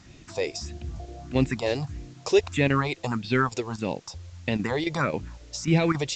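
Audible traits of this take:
chopped level 3.7 Hz, depth 60%, duty 90%
phaser sweep stages 4, 1.6 Hz, lowest notch 190–1,200 Hz
a quantiser's noise floor 10 bits, dither triangular
A-law companding

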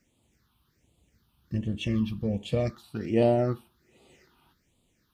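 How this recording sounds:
phaser sweep stages 6, 1.3 Hz, lowest notch 500–1,600 Hz

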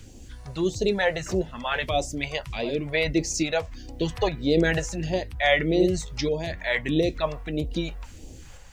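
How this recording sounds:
a quantiser's noise floor 12 bits, dither none
sample-and-hold tremolo
phaser sweep stages 2, 1.6 Hz, lowest notch 260–1,400 Hz

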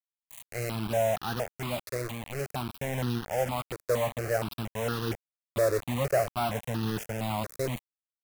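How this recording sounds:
a quantiser's noise floor 6 bits, dither none
notches that jump at a steady rate 4.3 Hz 830–2,200 Hz

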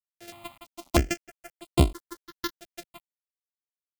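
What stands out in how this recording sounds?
a buzz of ramps at a fixed pitch in blocks of 128 samples
tremolo triangle 1.2 Hz, depth 30%
a quantiser's noise floor 8 bits, dither none
notches that jump at a steady rate 3.1 Hz 290–5,900 Hz

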